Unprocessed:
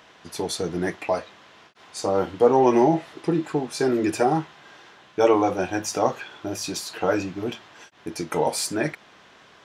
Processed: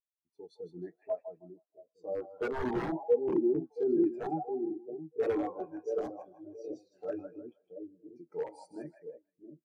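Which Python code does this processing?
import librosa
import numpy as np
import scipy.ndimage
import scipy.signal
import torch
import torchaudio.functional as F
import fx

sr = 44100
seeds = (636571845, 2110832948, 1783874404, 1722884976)

y = fx.echo_split(x, sr, split_hz=570.0, low_ms=676, high_ms=158, feedback_pct=52, wet_db=-3.5)
y = (np.mod(10.0 ** (11.5 / 20.0) * y + 1.0, 2.0) - 1.0) / 10.0 ** (11.5 / 20.0)
y = fx.spectral_expand(y, sr, expansion=2.5)
y = y * librosa.db_to_amplitude(-5.5)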